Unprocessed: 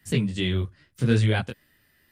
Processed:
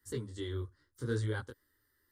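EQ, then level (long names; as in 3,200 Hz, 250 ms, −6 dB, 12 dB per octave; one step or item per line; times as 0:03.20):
phaser with its sweep stopped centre 680 Hz, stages 6
−8.5 dB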